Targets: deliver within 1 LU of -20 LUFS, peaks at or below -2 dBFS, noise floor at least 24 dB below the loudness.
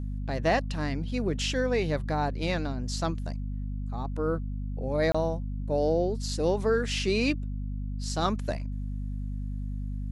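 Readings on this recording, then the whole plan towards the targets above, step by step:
dropouts 1; longest dropout 25 ms; hum 50 Hz; highest harmonic 250 Hz; hum level -30 dBFS; loudness -30.0 LUFS; peak level -13.0 dBFS; loudness target -20.0 LUFS
-> interpolate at 5.12 s, 25 ms; hum notches 50/100/150/200/250 Hz; trim +10 dB

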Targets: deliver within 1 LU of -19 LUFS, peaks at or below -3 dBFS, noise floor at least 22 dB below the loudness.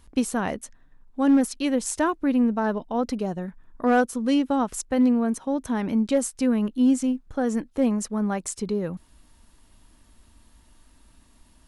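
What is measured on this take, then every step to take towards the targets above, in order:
clipped samples 0.2%; clipping level -13.0 dBFS; loudness -24.5 LUFS; peak level -13.0 dBFS; loudness target -19.0 LUFS
-> clip repair -13 dBFS; trim +5.5 dB

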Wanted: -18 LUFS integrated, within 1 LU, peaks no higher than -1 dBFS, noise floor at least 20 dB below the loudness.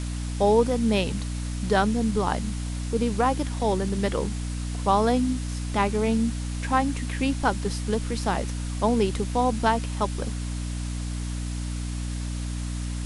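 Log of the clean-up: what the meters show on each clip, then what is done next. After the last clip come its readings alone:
hum 60 Hz; highest harmonic 300 Hz; hum level -28 dBFS; noise floor -30 dBFS; noise floor target -46 dBFS; loudness -26.0 LUFS; peak level -9.0 dBFS; loudness target -18.0 LUFS
-> de-hum 60 Hz, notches 5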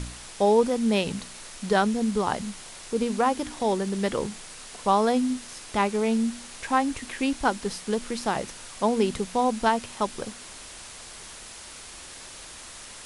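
hum not found; noise floor -43 dBFS; noise floor target -46 dBFS
-> noise print and reduce 6 dB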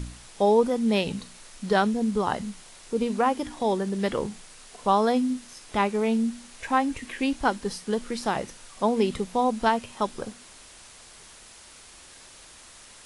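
noise floor -49 dBFS; loudness -26.0 LUFS; peak level -9.5 dBFS; loudness target -18.0 LUFS
-> trim +8 dB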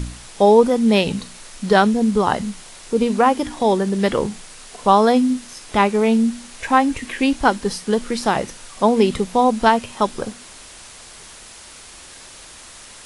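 loudness -18.0 LUFS; peak level -1.5 dBFS; noise floor -41 dBFS

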